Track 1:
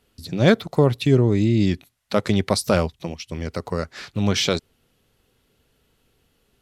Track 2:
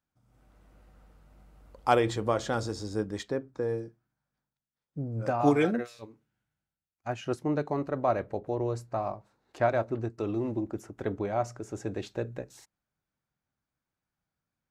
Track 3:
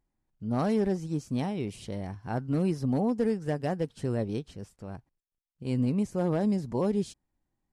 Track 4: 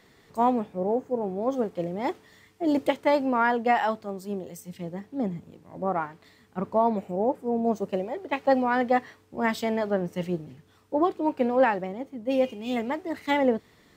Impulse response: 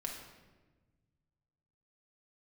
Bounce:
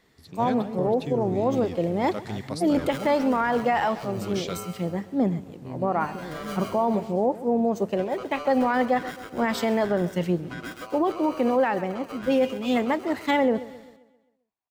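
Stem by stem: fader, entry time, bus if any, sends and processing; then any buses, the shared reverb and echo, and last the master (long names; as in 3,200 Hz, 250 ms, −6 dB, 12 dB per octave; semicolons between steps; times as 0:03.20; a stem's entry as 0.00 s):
−14.0 dB, 0.00 s, no bus, no send, no echo send, no processing
−6.0 dB, 0.90 s, bus A, no send, echo send −11 dB, ring modulator with a square carrier 880 Hz
+1.5 dB, 0.00 s, bus A, no send, echo send −16 dB, amplitude modulation by smooth noise
−5.5 dB, 0.00 s, no bus, no send, echo send −20 dB, automatic gain control gain up to 12.5 dB
bus A: 0.0 dB, head-to-tape spacing loss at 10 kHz 21 dB; brickwall limiter −28 dBFS, peak gain reduction 12.5 dB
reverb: not used
echo: repeating echo 132 ms, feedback 47%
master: brickwall limiter −14 dBFS, peak gain reduction 7 dB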